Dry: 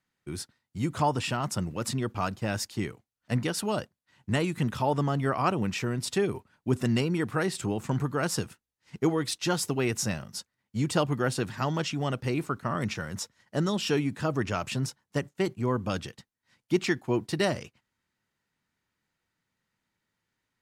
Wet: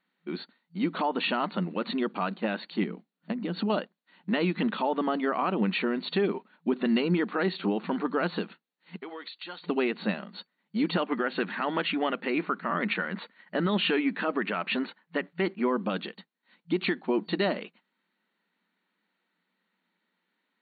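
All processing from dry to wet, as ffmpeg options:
-filter_complex "[0:a]asettb=1/sr,asplit=3[s0][s1][s2];[s0]atrim=end=2.834[s3];[s1]atrim=start=2.83:end=3.7,asetpts=PTS-STARTPTS,afade=t=in:d=0.004:c=qsin,afade=t=out:st=0.866:d=0.004:c=qsin,lowpass=11000,equalizer=f=180:w=0.6:g=13,acompressor=threshold=0.0355:ratio=16:attack=3.2:release=140:knee=1:detection=peak[s4];[s2]atrim=start=3.696[s5];[s3][s4]acrossfade=d=0.004:c1=hsin:c2=qsin[s6];[s6][s5]acrossfade=d=0.004:c1=qsin:c2=hsin,asettb=1/sr,asplit=3[s7][s8][s9];[s7]atrim=end=8.974[s10];[s8]atrim=start=8.97:end=9.64,asetpts=PTS-STARTPTS,afade=t=in:d=0.004:c=qsin,afade=t=out:st=0.666:d=0.004:c=qsin,highpass=f=1500:p=1,acompressor=threshold=0.01:ratio=6:attack=3.2:release=140:knee=1:detection=peak[s11];[s9]atrim=start=9.636[s12];[s10][s11]acrossfade=d=0.004:c1=hsin:c2=qsin[s13];[s13][s12]acrossfade=d=0.004:c1=qsin:c2=hsin,asettb=1/sr,asplit=3[s14][s15][s16];[s14]atrim=end=10.944[s17];[s15]atrim=start=10.94:end=15.7,asetpts=PTS-STARTPTS,afade=t=in:d=0.004:c=qsin,afade=t=out:st=4.756:d=0.004:c=qsin,lowpass=f=3100:p=1,equalizer=f=2000:t=o:w=1.5:g=7.5[s18];[s16]atrim=start=15.696[s19];[s17][s18]acrossfade=d=0.004:c1=hsin:c2=qsin[s20];[s20][s19]acrossfade=d=0.004:c1=qsin:c2=hsin,afftfilt=real='re*between(b*sr/4096,170,4500)':imag='im*between(b*sr/4096,170,4500)':win_size=4096:overlap=0.75,alimiter=limit=0.0841:level=0:latency=1:release=131,volume=1.68"

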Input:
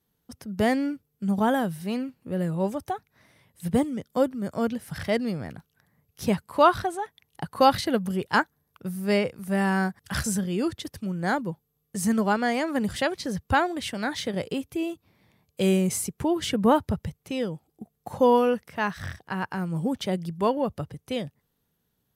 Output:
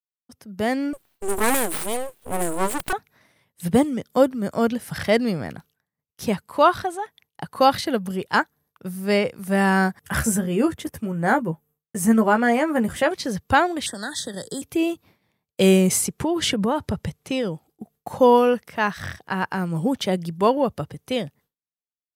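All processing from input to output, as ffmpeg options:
-filter_complex "[0:a]asettb=1/sr,asplit=3[s0][s1][s2];[s0]atrim=end=0.934[s3];[s1]atrim=start=0.93:end=2.93,asetpts=PTS-STARTPTS,afade=t=in:d=0.004:c=qsin,afade=t=out:st=1.996:d=0.004:c=qsin,highshelf=f=6400:t=q:w=3:g=11.5,aeval=exprs='abs(val(0))':c=same[s4];[s2]atrim=start=2.926[s5];[s3][s4]acrossfade=d=0.004:c1=hsin:c2=qsin[s6];[s6][s5]acrossfade=d=0.004:c1=qsin:c2=hsin,asettb=1/sr,asplit=3[s7][s8][s9];[s7]atrim=end=10.014[s10];[s8]atrim=start=10.01:end=13.11,asetpts=PTS-STARTPTS,afade=t=in:d=0.004:c=qsin,afade=t=out:st=3.096:d=0.004:c=qsin,equalizer=f=4400:t=o:w=0.99:g=-13,asplit=2[s11][s12];[s12]adelay=13,volume=0.473[s13];[s11][s13]amix=inputs=2:normalize=0,atrim=end_sample=136710[s14];[s9]atrim=start=13.106[s15];[s10][s14]acrossfade=d=0.004:c1=hsin:c2=qsin[s16];[s16][s15]acrossfade=d=0.004:c1=qsin:c2=hsin,asettb=1/sr,asplit=3[s17][s18][s19];[s17]atrim=end=13.864[s20];[s18]atrim=start=13.86:end=14.62,asetpts=PTS-STARTPTS,afade=t=in:d=0.004:c=qsin,afade=t=out:st=0.756:d=0.004:c=qsin,equalizer=f=8200:t=o:w=0.41:g=13,acrossover=split=110|250|1800[s21][s22][s23][s24];[s21]acompressor=threshold=0.00112:ratio=3[s25];[s22]acompressor=threshold=0.00631:ratio=3[s26];[s23]acompressor=threshold=0.00794:ratio=3[s27];[s24]acompressor=threshold=0.0251:ratio=3[s28];[s25][s26][s27][s28]amix=inputs=4:normalize=0,asuperstop=centerf=2500:order=20:qfactor=1.9[s29];[s19]atrim=start=14.616[s30];[s20][s29]acrossfade=d=0.004:c1=hsin:c2=qsin[s31];[s31][s30]acrossfade=d=0.004:c1=qsin:c2=hsin,asettb=1/sr,asplit=3[s32][s33][s34];[s32]atrim=end=15.994[s35];[s33]atrim=start=15.99:end=17.49,asetpts=PTS-STARTPTS,afade=t=in:d=0.004:c=qsin,afade=t=out:st=1.496:d=0.004:c=qsin,lowpass=12000,acompressor=threshold=0.0562:ratio=12:attack=3.2:release=140:knee=1:detection=peak[s36];[s34]atrim=start=17.486[s37];[s35][s36]acrossfade=d=0.004:c1=hsin:c2=qsin[s38];[s38][s37]acrossfade=d=0.004:c1=qsin:c2=hsin,agate=range=0.0224:threshold=0.00251:ratio=3:detection=peak,lowshelf=f=130:g=-8,dynaudnorm=f=190:g=9:m=4.22,volume=0.668"

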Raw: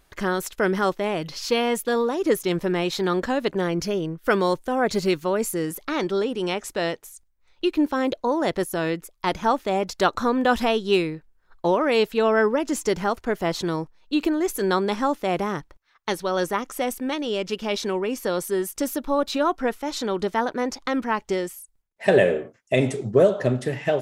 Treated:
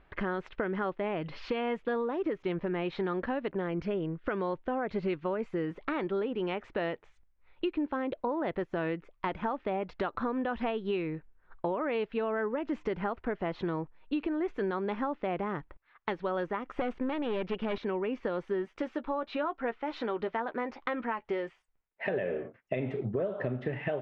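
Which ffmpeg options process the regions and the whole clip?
-filter_complex "[0:a]asettb=1/sr,asplit=3[s0][s1][s2];[s0]atrim=end=16.784[s3];[s1]atrim=start=16.78:end=17.78,asetpts=PTS-STARTPTS,afade=t=in:d=0.004:c=qsin,afade=t=out:st=0.996:d=0.004:c=qsin,highshelf=f=7800:g=-5,acontrast=85,aeval=exprs='(tanh(8.91*val(0)+0.6)-tanh(0.6))/8.91':c=same[s4];[s2]atrim=start=17.776[s5];[s3][s4]acrossfade=d=0.004:c1=hsin:c2=qsin[s6];[s6][s5]acrossfade=d=0.004:c1=qsin:c2=hsin,asettb=1/sr,asplit=3[s7][s8][s9];[s7]atrim=end=18.654[s10];[s8]atrim=start=18.65:end=22.09,asetpts=PTS-STARTPTS,afade=t=in:d=0.004:c=qsin,afade=t=out:st=3.436:d=0.004:c=qsin,lowshelf=f=240:g=-10.5,asplit=2[s11][s12];[s12]adelay=13,volume=0.282[s13];[s11][s13]amix=inputs=2:normalize=0,atrim=end_sample=151704[s14];[s9]atrim=start=22.086[s15];[s10][s14]acrossfade=d=0.004:c1=hsin:c2=qsin[s16];[s16][s15]acrossfade=d=0.004:c1=qsin:c2=hsin,lowpass=f=2700:w=0.5412,lowpass=f=2700:w=1.3066,alimiter=limit=0.188:level=0:latency=1:release=210,acompressor=threshold=0.0282:ratio=3"

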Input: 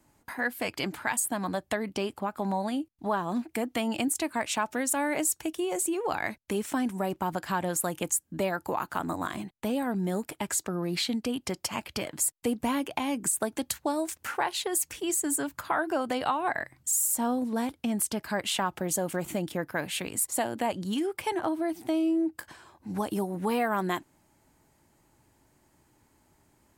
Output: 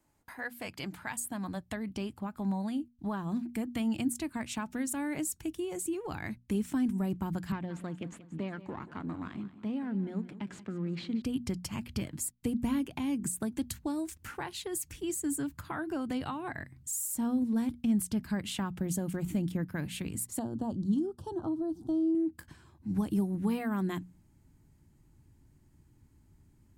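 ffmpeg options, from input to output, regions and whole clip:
-filter_complex "[0:a]asettb=1/sr,asplit=3[s0][s1][s2];[s0]atrim=end=7.524[s3];[s1]atrim=start=7.52:end=11.22,asetpts=PTS-STARTPTS,afade=t=in:d=0.004:c=qsin,afade=t=out:st=3.696:d=0.004:c=qsin,aeval=exprs='if(lt(val(0),0),0.447*val(0),val(0))':c=same,highpass=180,lowpass=3300,aecho=1:1:181|362|543|724:0.168|0.0755|0.034|0.0153,atrim=end_sample=163170[s4];[s2]atrim=start=11.216[s5];[s3][s4]acrossfade=d=0.004:c1=hsin:c2=qsin[s6];[s6][s5]acrossfade=d=0.004:c1=qsin:c2=hsin,asettb=1/sr,asplit=3[s7][s8][s9];[s7]atrim=end=20.394[s10];[s8]atrim=start=20.39:end=22.15,asetpts=PTS-STARTPTS,afade=t=in:d=0.004:c=qsin,afade=t=out:st=1.756:d=0.004:c=qsin,asuperstop=centerf=2200:order=4:qfactor=0.8,aemphasis=mode=reproduction:type=50fm[s11];[s9]atrim=start=22.146[s12];[s10][s11]acrossfade=d=0.004:c1=hsin:c2=qsin[s13];[s13][s12]acrossfade=d=0.004:c1=qsin:c2=hsin,bandreject=f=60:t=h:w=6,bandreject=f=120:t=h:w=6,bandreject=f=180:t=h:w=6,bandreject=f=240:t=h:w=6,asubboost=boost=9:cutoff=200,volume=0.376"

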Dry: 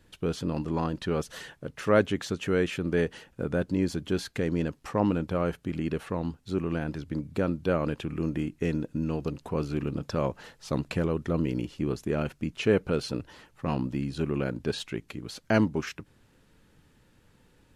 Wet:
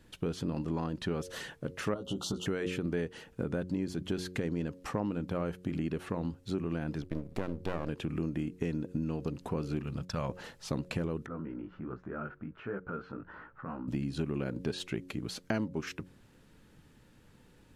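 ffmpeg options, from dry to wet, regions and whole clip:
-filter_complex "[0:a]asettb=1/sr,asplit=3[s0][s1][s2];[s0]atrim=end=1.944[s3];[s1]atrim=start=1.94:end=2.46,asetpts=PTS-STARTPTS,afade=t=in:d=0.004:c=qsin,afade=t=out:st=0.516:d=0.004:c=qsin,asuperstop=centerf=2000:order=20:qfactor=1.5,acompressor=threshold=0.0398:ratio=10:attack=3.2:release=140:knee=1:detection=peak,asplit=2[s4][s5];[s5]adelay=16,volume=0.631[s6];[s4][s6]amix=inputs=2:normalize=0,atrim=end_sample=22932[s7];[s2]atrim=start=2.456[s8];[s3][s7]acrossfade=d=0.004:c1=hsin:c2=qsin[s9];[s9][s8]acrossfade=d=0.004:c1=qsin:c2=hsin,asettb=1/sr,asplit=3[s10][s11][s12];[s10]atrim=end=7.024[s13];[s11]atrim=start=7.02:end=7.89,asetpts=PTS-STARTPTS,afade=t=in:d=0.004:c=qsin,afade=t=out:st=0.866:d=0.004:c=qsin,agate=range=0.0224:threshold=0.00562:ratio=3:release=100:detection=peak,aeval=exprs='max(val(0),0)':c=same[s14];[s12]atrim=start=7.886[s15];[s13][s14]acrossfade=d=0.004:c1=hsin:c2=qsin[s16];[s16][s15]acrossfade=d=0.004:c1=qsin:c2=hsin,asettb=1/sr,asplit=3[s17][s18][s19];[s17]atrim=end=9.824[s20];[s18]atrim=start=9.82:end=10.29,asetpts=PTS-STARTPTS,afade=t=in:d=0.004:c=qsin,afade=t=out:st=0.466:d=0.004:c=qsin,agate=range=0.282:threshold=0.00891:ratio=16:release=100:detection=peak,equalizer=f=330:t=o:w=1.4:g=-13[s21];[s19]atrim=start=10.286[s22];[s20][s21]acrossfade=d=0.004:c1=hsin:c2=qsin[s23];[s23][s22]acrossfade=d=0.004:c1=qsin:c2=hsin,asettb=1/sr,asplit=3[s24][s25][s26];[s24]atrim=end=11.264[s27];[s25]atrim=start=11.26:end=13.88,asetpts=PTS-STARTPTS,afade=t=in:d=0.004:c=qsin,afade=t=out:st=2.616:d=0.004:c=qsin,flanger=delay=15.5:depth=4.8:speed=1.3,acompressor=threshold=0.00398:ratio=2:attack=3.2:release=140:knee=1:detection=peak,lowpass=f=1400:t=q:w=5[s28];[s26]atrim=start=13.876[s29];[s27][s28]acrossfade=d=0.004:c1=hsin:c2=qsin[s30];[s30][s29]acrossfade=d=0.004:c1=qsin:c2=hsin,equalizer=f=210:t=o:w=1.7:g=3,bandreject=f=90.99:t=h:w=4,bandreject=f=181.98:t=h:w=4,bandreject=f=272.97:t=h:w=4,bandreject=f=363.96:t=h:w=4,bandreject=f=454.95:t=h:w=4,bandreject=f=545.94:t=h:w=4,acompressor=threshold=0.0316:ratio=5"

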